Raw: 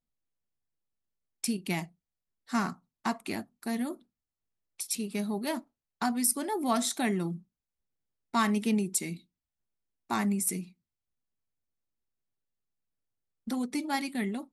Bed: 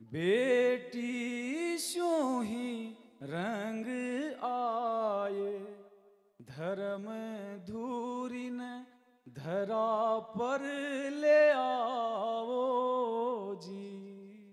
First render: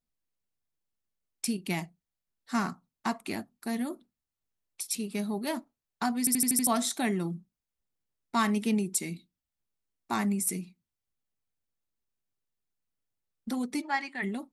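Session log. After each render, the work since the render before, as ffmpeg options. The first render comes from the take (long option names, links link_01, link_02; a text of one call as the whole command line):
ffmpeg -i in.wav -filter_complex "[0:a]asplit=3[link_01][link_02][link_03];[link_01]afade=type=out:start_time=13.81:duration=0.02[link_04];[link_02]highpass=470,equalizer=frequency=520:width_type=q:width=4:gain=-4,equalizer=frequency=950:width_type=q:width=4:gain=5,equalizer=frequency=1800:width_type=q:width=4:gain=8,equalizer=frequency=3700:width_type=q:width=4:gain=-9,equalizer=frequency=5600:width_type=q:width=4:gain=-5,lowpass=frequency=6200:width=0.5412,lowpass=frequency=6200:width=1.3066,afade=type=in:start_time=13.81:duration=0.02,afade=type=out:start_time=14.22:duration=0.02[link_05];[link_03]afade=type=in:start_time=14.22:duration=0.02[link_06];[link_04][link_05][link_06]amix=inputs=3:normalize=0,asplit=7[link_07][link_08][link_09][link_10][link_11][link_12][link_13];[link_07]atrim=end=6.272[link_14];[link_08]atrim=start=6.188:end=6.272[link_15];[link_09]atrim=start=6.188:end=6.272[link_16];[link_10]atrim=start=6.188:end=6.272[link_17];[link_11]atrim=start=6.188:end=6.272[link_18];[link_12]atrim=start=6.188:end=6.272[link_19];[link_13]atrim=start=6.668[link_20];[link_14][link_15]acrossfade=duration=0.004:curve1=hsin:curve2=hsin[link_21];[link_21][link_16]acrossfade=duration=0.004:curve1=hsin:curve2=hsin[link_22];[link_22][link_17]acrossfade=duration=0.004:curve1=hsin:curve2=hsin[link_23];[link_23][link_18]acrossfade=duration=0.004:curve1=hsin:curve2=hsin[link_24];[link_24][link_19]acrossfade=duration=0.004:curve1=hsin:curve2=hsin[link_25];[link_25][link_20]acrossfade=duration=0.004:curve1=hsin:curve2=hsin" out.wav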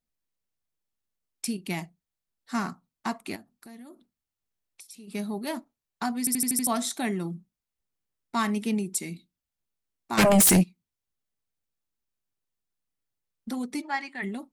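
ffmpeg -i in.wav -filter_complex "[0:a]asplit=3[link_01][link_02][link_03];[link_01]afade=type=out:start_time=3.35:duration=0.02[link_04];[link_02]acompressor=threshold=-46dB:ratio=4:attack=3.2:release=140:knee=1:detection=peak,afade=type=in:start_time=3.35:duration=0.02,afade=type=out:start_time=5.07:duration=0.02[link_05];[link_03]afade=type=in:start_time=5.07:duration=0.02[link_06];[link_04][link_05][link_06]amix=inputs=3:normalize=0,asplit=3[link_07][link_08][link_09];[link_07]afade=type=out:start_time=10.17:duration=0.02[link_10];[link_08]aeval=exprs='0.188*sin(PI/2*6.31*val(0)/0.188)':channel_layout=same,afade=type=in:start_time=10.17:duration=0.02,afade=type=out:start_time=10.62:duration=0.02[link_11];[link_09]afade=type=in:start_time=10.62:duration=0.02[link_12];[link_10][link_11][link_12]amix=inputs=3:normalize=0" out.wav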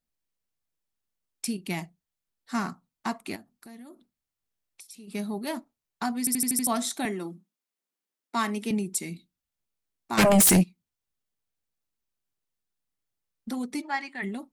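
ffmpeg -i in.wav -filter_complex "[0:a]asettb=1/sr,asplit=3[link_01][link_02][link_03];[link_01]atrim=end=7.054[link_04];[link_02]atrim=start=7.05:end=8.71,asetpts=PTS-STARTPTS,afade=type=in:duration=0.004:curve=qsin,afade=type=out:start_time=1.656:duration=0.004:curve=qsin,highpass=frequency=220:width=0.5412,highpass=frequency=220:width=1.3066[link_05];[link_03]atrim=start=8.706[link_06];[link_04][link_05]acrossfade=duration=0.004:curve1=hsin:curve2=qsin[link_07];[link_07][link_06]acrossfade=duration=0.004:curve1=qsin:curve2=hsin" out.wav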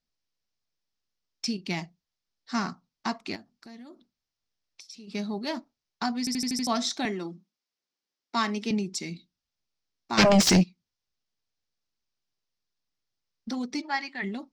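ffmpeg -i in.wav -af "highshelf=frequency=7500:width_type=q:width=3:gain=-13.5" out.wav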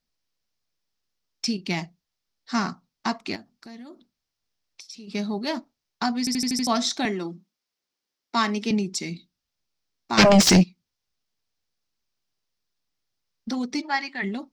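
ffmpeg -i in.wav -af "volume=4dB" out.wav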